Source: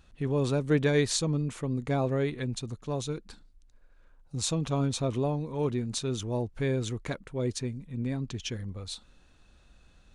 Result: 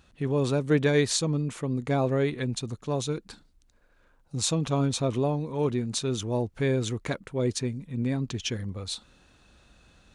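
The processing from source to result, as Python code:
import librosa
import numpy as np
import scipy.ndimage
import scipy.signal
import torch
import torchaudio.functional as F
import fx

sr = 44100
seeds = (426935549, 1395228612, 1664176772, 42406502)

p1 = fx.rider(x, sr, range_db=4, speed_s=2.0)
p2 = x + F.gain(torch.from_numpy(p1), -2.0).numpy()
p3 = fx.highpass(p2, sr, hz=81.0, slope=6)
y = F.gain(torch.from_numpy(p3), -2.0).numpy()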